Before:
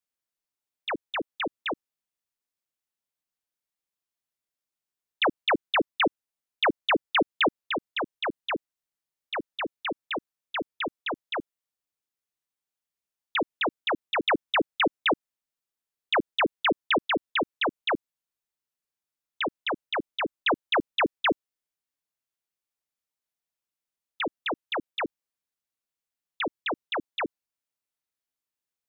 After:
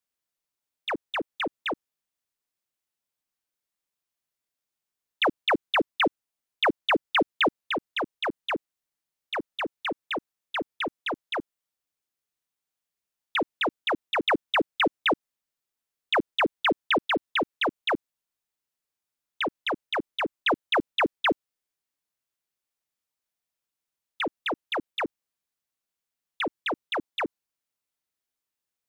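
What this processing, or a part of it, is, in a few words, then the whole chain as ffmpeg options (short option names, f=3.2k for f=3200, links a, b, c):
parallel distortion: -filter_complex "[0:a]asplit=2[a][b];[b]asoftclip=type=hard:threshold=-35.5dB,volume=-11.5dB[c];[a][c]amix=inputs=2:normalize=0"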